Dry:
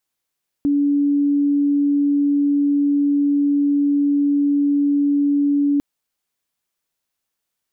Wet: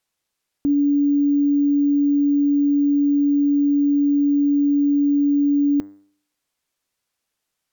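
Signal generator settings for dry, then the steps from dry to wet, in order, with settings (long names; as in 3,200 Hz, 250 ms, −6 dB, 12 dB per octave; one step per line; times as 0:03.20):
tone sine 286 Hz −14 dBFS 5.15 s
hum removal 99.28 Hz, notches 21
bad sample-rate conversion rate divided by 2×, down none, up hold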